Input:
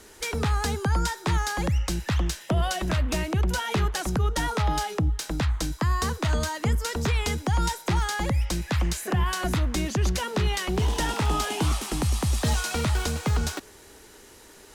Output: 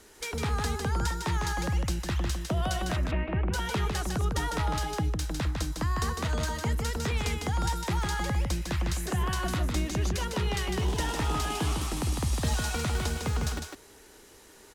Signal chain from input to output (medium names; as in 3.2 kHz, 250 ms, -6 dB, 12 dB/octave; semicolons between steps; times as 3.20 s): 2.96–3.53 s: steep low-pass 2.7 kHz 36 dB/octave; delay 153 ms -4.5 dB; trim -5 dB